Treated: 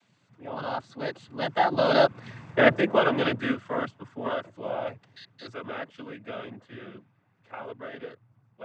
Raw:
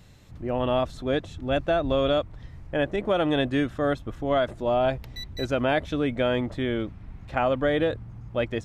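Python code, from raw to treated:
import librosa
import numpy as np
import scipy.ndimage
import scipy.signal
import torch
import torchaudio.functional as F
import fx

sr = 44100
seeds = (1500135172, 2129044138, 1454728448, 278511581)

y = fx.doppler_pass(x, sr, speed_mps=25, closest_m=7.1, pass_at_s=2.42)
y = fx.peak_eq(y, sr, hz=1400.0, db=8.0, octaves=2.3)
y = fx.noise_vocoder(y, sr, seeds[0], bands=16)
y = F.gain(torch.from_numpy(y), 5.5).numpy()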